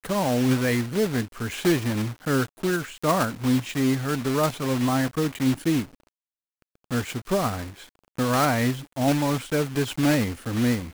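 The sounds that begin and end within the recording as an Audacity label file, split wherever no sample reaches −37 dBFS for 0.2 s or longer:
6.910000	7.840000	sound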